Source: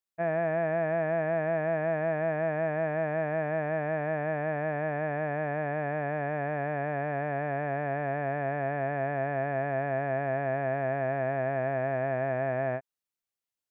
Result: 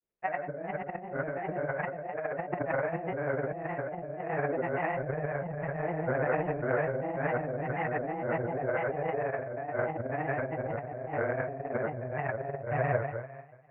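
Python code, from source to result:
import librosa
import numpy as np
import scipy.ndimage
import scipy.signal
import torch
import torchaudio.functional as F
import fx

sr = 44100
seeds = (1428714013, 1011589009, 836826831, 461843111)

p1 = fx.harmonic_tremolo(x, sr, hz=2.0, depth_pct=100, crossover_hz=730.0)
p2 = p1 + fx.room_flutter(p1, sr, wall_m=9.2, rt60_s=1.4, dry=0)
p3 = fx.over_compress(p2, sr, threshold_db=-36.0, ratio=-0.5)
p4 = fx.low_shelf(p3, sr, hz=100.0, db=7.5)
p5 = fx.granulator(p4, sr, seeds[0], grain_ms=100.0, per_s=20.0, spray_ms=100.0, spread_st=3)
p6 = scipy.signal.sosfilt(scipy.signal.butter(4, 2500.0, 'lowpass', fs=sr, output='sos'), p5)
p7 = fx.peak_eq(p6, sr, hz=440.0, db=6.5, octaves=0.88)
y = p7 * librosa.db_to_amplitude(3.0)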